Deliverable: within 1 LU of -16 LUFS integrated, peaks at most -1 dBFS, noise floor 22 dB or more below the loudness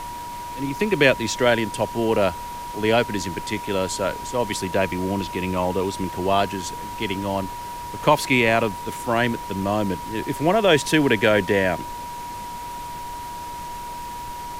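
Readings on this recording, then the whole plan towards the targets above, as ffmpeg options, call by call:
steady tone 960 Hz; tone level -31 dBFS; noise floor -33 dBFS; noise floor target -45 dBFS; loudness -23.0 LUFS; peak -3.5 dBFS; loudness target -16.0 LUFS
-> -af "bandreject=f=960:w=30"
-af "afftdn=nr=12:nf=-33"
-af "volume=7dB,alimiter=limit=-1dB:level=0:latency=1"

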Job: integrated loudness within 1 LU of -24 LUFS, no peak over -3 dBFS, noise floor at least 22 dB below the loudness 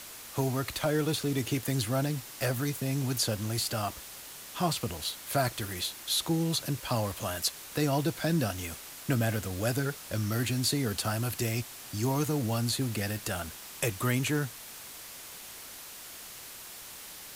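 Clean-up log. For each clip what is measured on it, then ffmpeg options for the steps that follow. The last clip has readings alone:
noise floor -46 dBFS; noise floor target -53 dBFS; loudness -31.0 LUFS; peak -15.0 dBFS; loudness target -24.0 LUFS
-> -af "afftdn=nr=7:nf=-46"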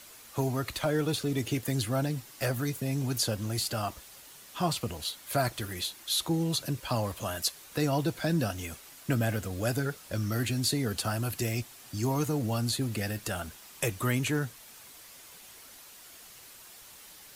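noise floor -51 dBFS; noise floor target -53 dBFS
-> -af "afftdn=nr=6:nf=-51"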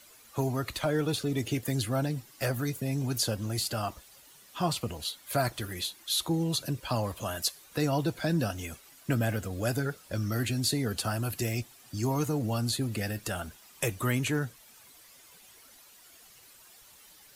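noise floor -56 dBFS; loudness -31.0 LUFS; peak -15.0 dBFS; loudness target -24.0 LUFS
-> -af "volume=7dB"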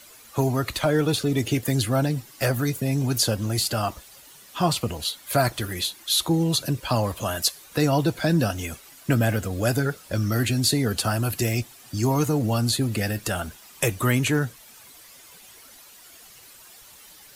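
loudness -24.0 LUFS; peak -8.0 dBFS; noise floor -49 dBFS

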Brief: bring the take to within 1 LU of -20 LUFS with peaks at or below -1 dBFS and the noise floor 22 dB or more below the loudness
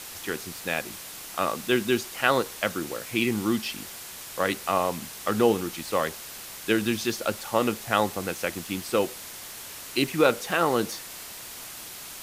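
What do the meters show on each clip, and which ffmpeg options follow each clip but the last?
noise floor -41 dBFS; noise floor target -49 dBFS; loudness -27.0 LUFS; peak -5.0 dBFS; loudness target -20.0 LUFS
-> -af "afftdn=nr=8:nf=-41"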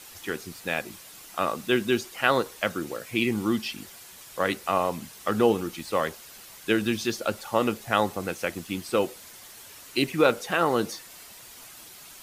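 noise floor -47 dBFS; noise floor target -49 dBFS
-> -af "afftdn=nr=6:nf=-47"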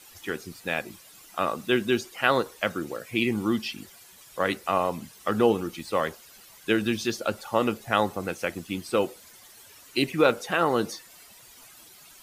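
noise floor -51 dBFS; loudness -27.0 LUFS; peak -5.0 dBFS; loudness target -20.0 LUFS
-> -af "volume=7dB,alimiter=limit=-1dB:level=0:latency=1"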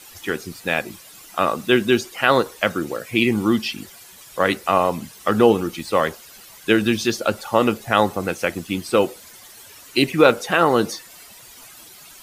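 loudness -20.0 LUFS; peak -1.0 dBFS; noise floor -44 dBFS

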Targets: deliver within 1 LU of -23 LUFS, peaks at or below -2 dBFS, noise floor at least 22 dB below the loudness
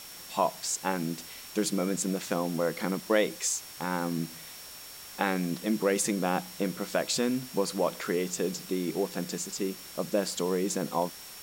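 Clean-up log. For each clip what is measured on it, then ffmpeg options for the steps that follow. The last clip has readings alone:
steady tone 5500 Hz; tone level -50 dBFS; noise floor -46 dBFS; noise floor target -53 dBFS; loudness -30.5 LUFS; peak -11.5 dBFS; loudness target -23.0 LUFS
-> -af "bandreject=f=5.5k:w=30"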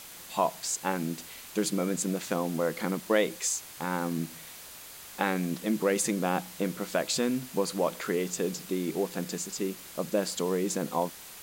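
steady tone none; noise floor -46 dBFS; noise floor target -53 dBFS
-> -af "afftdn=nr=7:nf=-46"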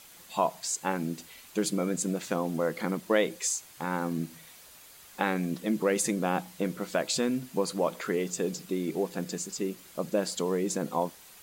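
noise floor -52 dBFS; noise floor target -53 dBFS
-> -af "afftdn=nr=6:nf=-52"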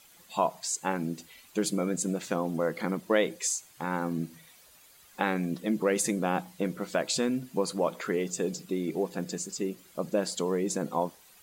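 noise floor -57 dBFS; loudness -30.5 LUFS; peak -11.5 dBFS; loudness target -23.0 LUFS
-> -af "volume=7.5dB"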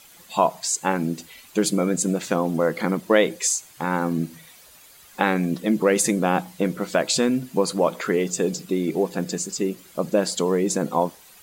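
loudness -23.0 LUFS; peak -4.0 dBFS; noise floor -50 dBFS

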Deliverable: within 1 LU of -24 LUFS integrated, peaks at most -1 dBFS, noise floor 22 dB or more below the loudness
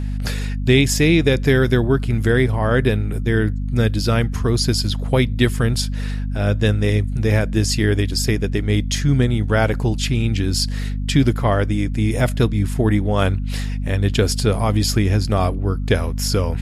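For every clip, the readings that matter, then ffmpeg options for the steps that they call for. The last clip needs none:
hum 50 Hz; harmonics up to 250 Hz; hum level -21 dBFS; loudness -19.0 LUFS; peak -3.0 dBFS; loudness target -24.0 LUFS
-> -af "bandreject=f=50:t=h:w=6,bandreject=f=100:t=h:w=6,bandreject=f=150:t=h:w=6,bandreject=f=200:t=h:w=6,bandreject=f=250:t=h:w=6"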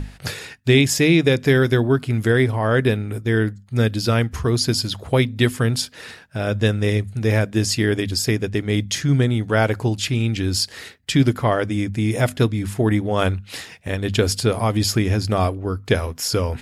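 hum none; loudness -20.0 LUFS; peak -4.5 dBFS; loudness target -24.0 LUFS
-> -af "volume=-4dB"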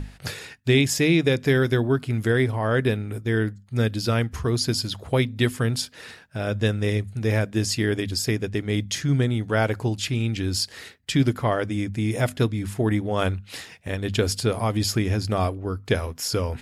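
loudness -24.0 LUFS; peak -8.5 dBFS; noise floor -49 dBFS

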